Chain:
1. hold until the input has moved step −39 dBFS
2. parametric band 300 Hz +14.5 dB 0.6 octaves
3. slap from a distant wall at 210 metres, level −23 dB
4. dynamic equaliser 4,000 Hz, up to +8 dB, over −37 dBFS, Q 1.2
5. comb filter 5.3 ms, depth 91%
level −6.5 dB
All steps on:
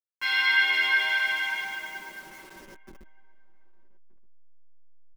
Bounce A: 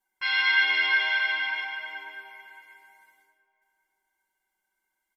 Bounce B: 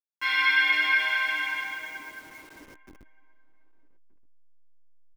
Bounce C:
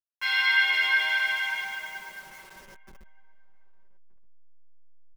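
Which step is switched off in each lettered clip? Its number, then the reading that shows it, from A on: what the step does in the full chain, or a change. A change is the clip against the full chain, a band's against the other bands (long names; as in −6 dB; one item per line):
1, distortion level −21 dB
5, 1 kHz band +4.5 dB
2, 250 Hz band −7.5 dB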